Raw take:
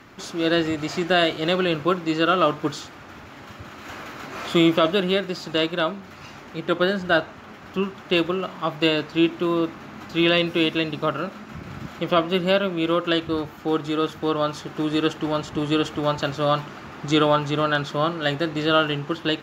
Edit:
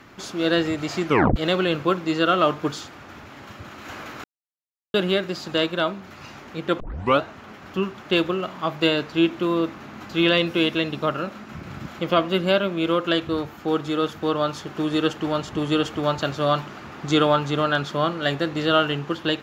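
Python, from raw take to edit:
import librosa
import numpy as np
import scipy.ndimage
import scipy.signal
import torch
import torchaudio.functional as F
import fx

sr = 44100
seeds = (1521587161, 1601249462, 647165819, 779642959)

y = fx.edit(x, sr, fx.tape_stop(start_s=1.06, length_s=0.3),
    fx.silence(start_s=4.24, length_s=0.7),
    fx.tape_start(start_s=6.8, length_s=0.41), tone=tone)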